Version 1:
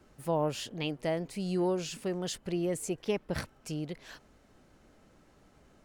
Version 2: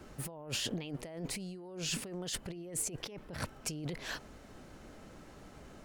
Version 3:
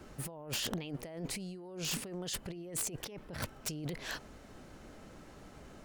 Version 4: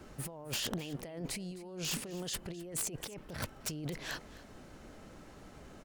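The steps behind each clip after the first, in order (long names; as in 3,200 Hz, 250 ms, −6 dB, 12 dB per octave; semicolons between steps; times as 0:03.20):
compressor whose output falls as the input rises −42 dBFS, ratio −1; level +1 dB
wrap-around overflow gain 27 dB
single-tap delay 260 ms −18 dB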